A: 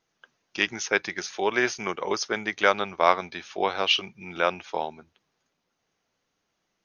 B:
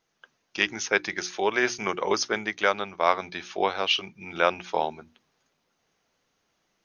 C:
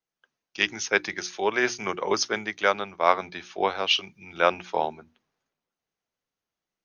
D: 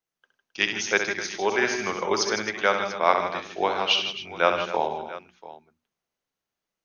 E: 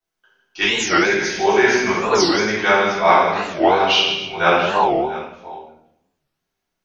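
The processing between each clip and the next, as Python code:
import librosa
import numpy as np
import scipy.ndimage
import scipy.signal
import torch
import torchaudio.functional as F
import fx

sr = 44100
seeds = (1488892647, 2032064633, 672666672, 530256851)

y1 = fx.hum_notches(x, sr, base_hz=60, count=6)
y1 = fx.rider(y1, sr, range_db=4, speed_s=0.5)
y2 = fx.band_widen(y1, sr, depth_pct=40)
y3 = fx.echo_multitap(y2, sr, ms=(66, 102, 153, 158, 265, 690), db=(-7.5, -17.0, -13.0, -11.5, -14.5, -17.0))
y4 = fx.room_shoebox(y3, sr, seeds[0], volume_m3=170.0, walls='mixed', distance_m=3.5)
y4 = fx.record_warp(y4, sr, rpm=45.0, depth_cents=250.0)
y4 = y4 * 10.0 ** (-3.5 / 20.0)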